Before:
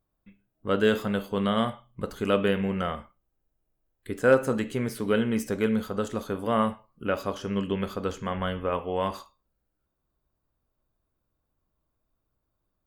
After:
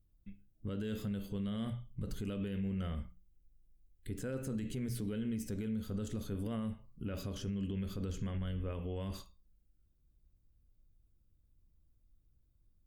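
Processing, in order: amplifier tone stack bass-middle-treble 10-0-1; hum notches 60/120/180 Hz; compression 5:1, threshold -48 dBFS, peak gain reduction 10 dB; peak limiter -48 dBFS, peak gain reduction 9 dB; trim +18 dB

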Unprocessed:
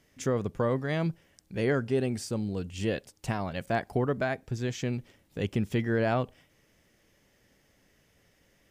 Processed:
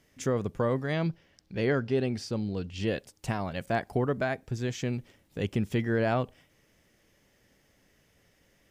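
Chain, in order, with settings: 0.93–2.88 s: resonant high shelf 6.4 kHz -8.5 dB, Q 1.5

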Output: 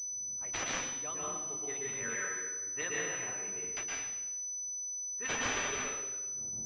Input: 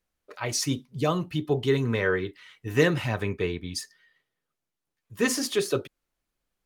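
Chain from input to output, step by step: wind noise 140 Hz -35 dBFS; differentiator; level-controlled noise filter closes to 350 Hz, open at -34.5 dBFS; plate-style reverb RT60 1.3 s, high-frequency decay 0.65×, pre-delay 105 ms, DRR -4.5 dB; class-D stage that switches slowly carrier 6 kHz

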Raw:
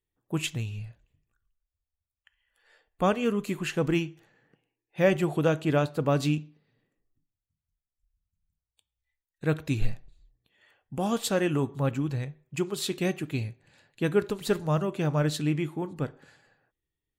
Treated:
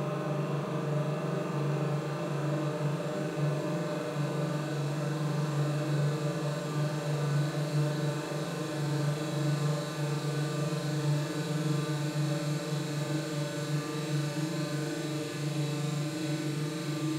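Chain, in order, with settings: flutter echo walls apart 7.1 m, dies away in 1.2 s; Paulstretch 37×, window 1.00 s, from 15.02 s; trim -8.5 dB

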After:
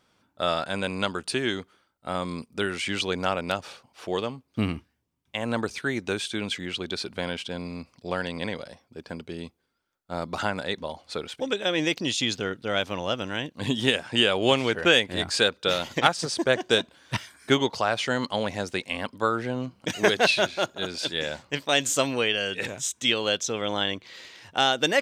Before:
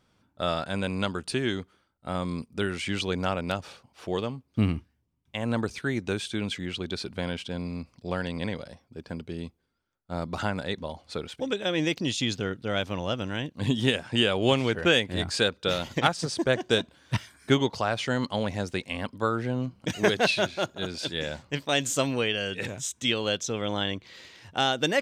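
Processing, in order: bass shelf 210 Hz -10.5 dB; trim +3.5 dB

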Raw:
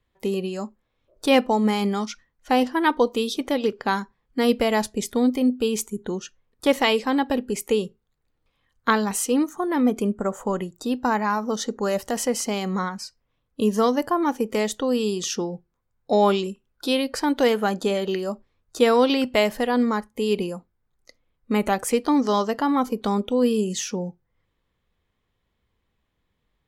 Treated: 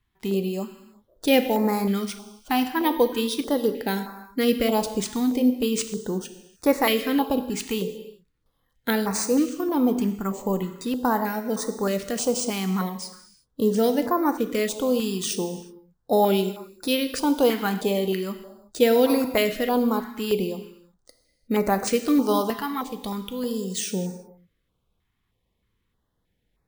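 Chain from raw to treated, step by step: 22.59–23.75 s: peaking EQ 360 Hz -8.5 dB 2.8 oct; sample-and-hold 3×; gated-style reverb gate 390 ms falling, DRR 8 dB; step-sequenced notch 3.2 Hz 530–3100 Hz

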